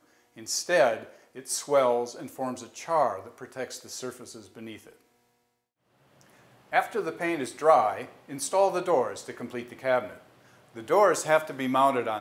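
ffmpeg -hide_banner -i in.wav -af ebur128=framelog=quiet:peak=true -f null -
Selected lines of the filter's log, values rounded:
Integrated loudness:
  I:         -26.6 LUFS
  Threshold: -38.2 LUFS
Loudness range:
  LRA:         9.6 LU
  Threshold: -49.2 LUFS
  LRA low:   -36.4 LUFS
  LRA high:  -26.9 LUFS
True peak:
  Peak:       -7.5 dBFS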